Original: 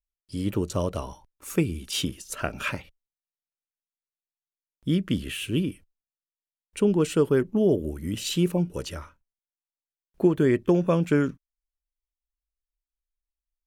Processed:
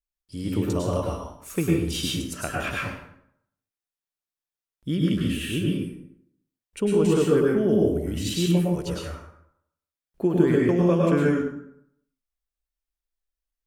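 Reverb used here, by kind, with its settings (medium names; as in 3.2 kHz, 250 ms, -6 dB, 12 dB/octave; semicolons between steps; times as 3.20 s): plate-style reverb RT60 0.72 s, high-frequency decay 0.65×, pre-delay 90 ms, DRR -3.5 dB; trim -3 dB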